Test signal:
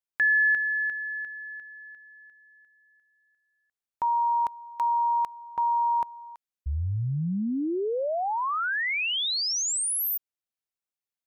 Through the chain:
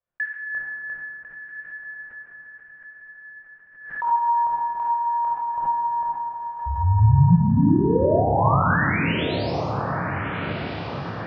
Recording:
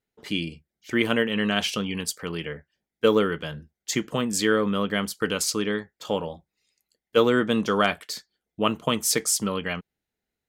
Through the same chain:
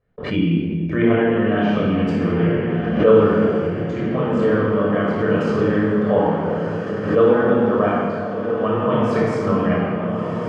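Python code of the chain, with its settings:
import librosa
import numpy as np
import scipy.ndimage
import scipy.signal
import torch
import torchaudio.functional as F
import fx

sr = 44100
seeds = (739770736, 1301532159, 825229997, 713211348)

p1 = scipy.signal.sosfilt(scipy.signal.butter(2, 1300.0, 'lowpass', fs=sr, output='sos'), x)
p2 = fx.gate_hold(p1, sr, open_db=-47.0, close_db=-48.0, hold_ms=35.0, range_db=-30, attack_ms=1.6, release_ms=282.0)
p3 = fx.dynamic_eq(p2, sr, hz=770.0, q=2.2, threshold_db=-43.0, ratio=4.0, max_db=5)
p4 = fx.rider(p3, sr, range_db=5, speed_s=0.5)
p5 = fx.doubler(p4, sr, ms=29.0, db=-6.5)
p6 = p5 + fx.echo_diffused(p5, sr, ms=1393, feedback_pct=51, wet_db=-7.0, dry=0)
p7 = fx.room_shoebox(p6, sr, seeds[0], volume_m3=3200.0, walls='mixed', distance_m=5.8)
p8 = fx.pre_swell(p7, sr, db_per_s=80.0)
y = F.gain(torch.from_numpy(p8), -3.5).numpy()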